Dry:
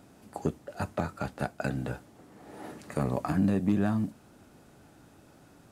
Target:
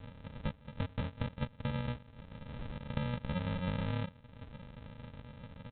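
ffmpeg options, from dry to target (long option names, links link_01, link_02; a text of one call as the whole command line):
ffmpeg -i in.wav -af "equalizer=frequency=125:width_type=o:width=1:gain=5,equalizer=frequency=250:width_type=o:width=1:gain=-11,equalizer=frequency=1000:width_type=o:width=1:gain=-12,equalizer=frequency=2000:width_type=o:width=1:gain=-6,acompressor=threshold=-48dB:ratio=3,aresample=8000,acrusher=samples=22:mix=1:aa=0.000001,aresample=44100,volume=10dB" out.wav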